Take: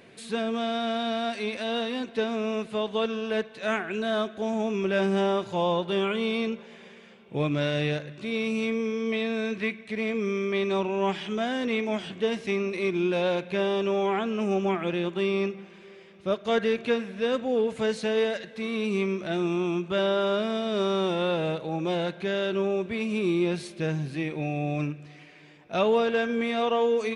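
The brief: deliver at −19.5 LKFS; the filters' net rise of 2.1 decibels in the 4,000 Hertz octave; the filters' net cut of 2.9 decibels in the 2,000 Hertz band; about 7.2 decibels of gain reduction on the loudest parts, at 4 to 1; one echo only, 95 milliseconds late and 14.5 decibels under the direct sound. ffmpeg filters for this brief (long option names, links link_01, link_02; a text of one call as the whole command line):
ffmpeg -i in.wav -af "equalizer=frequency=2000:width_type=o:gain=-5.5,equalizer=frequency=4000:width_type=o:gain=4.5,acompressor=threshold=-29dB:ratio=4,aecho=1:1:95:0.188,volume=13dB" out.wav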